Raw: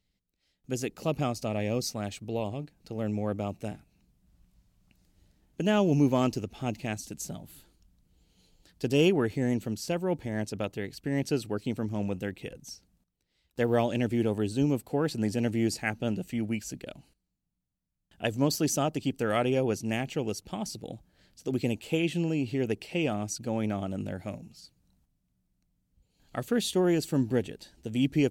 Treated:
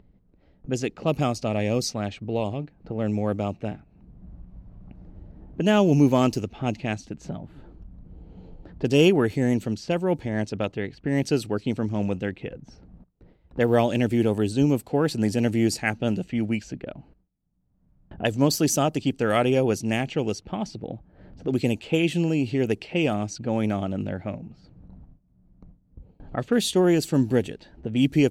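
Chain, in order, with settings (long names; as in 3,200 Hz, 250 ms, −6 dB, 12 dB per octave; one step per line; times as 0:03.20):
noise gate with hold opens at −60 dBFS
low-pass that shuts in the quiet parts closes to 770 Hz, open at −24.5 dBFS
upward compression, threshold −34 dBFS
level +5.5 dB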